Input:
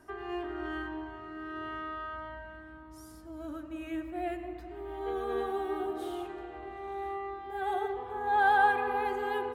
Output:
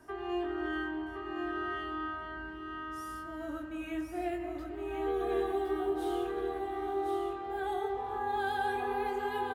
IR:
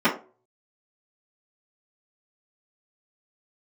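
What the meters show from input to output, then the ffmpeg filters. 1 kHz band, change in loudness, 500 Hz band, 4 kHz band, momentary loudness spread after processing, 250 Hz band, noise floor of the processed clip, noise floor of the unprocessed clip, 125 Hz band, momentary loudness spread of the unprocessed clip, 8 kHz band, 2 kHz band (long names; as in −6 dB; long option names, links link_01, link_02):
−4.0 dB, −2.0 dB, +1.5 dB, +1.0 dB, 8 LU, +2.5 dB, −43 dBFS, −49 dBFS, +0.5 dB, 17 LU, can't be measured, −4.5 dB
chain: -filter_complex "[0:a]asplit=2[link_01][link_02];[link_02]adelay=23,volume=-5dB[link_03];[link_01][link_03]amix=inputs=2:normalize=0,acrossover=split=420|3000[link_04][link_05][link_06];[link_05]acompressor=threshold=-35dB:ratio=6[link_07];[link_04][link_07][link_06]amix=inputs=3:normalize=0,aecho=1:1:1065:0.562"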